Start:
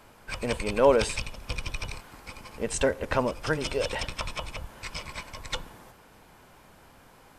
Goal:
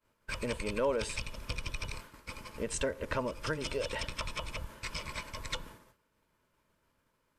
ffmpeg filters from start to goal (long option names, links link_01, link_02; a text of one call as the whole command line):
ffmpeg -i in.wav -af "asuperstop=centerf=760:order=8:qfactor=4.7,agate=range=-33dB:threshold=-41dB:ratio=3:detection=peak,acompressor=threshold=-36dB:ratio=2" out.wav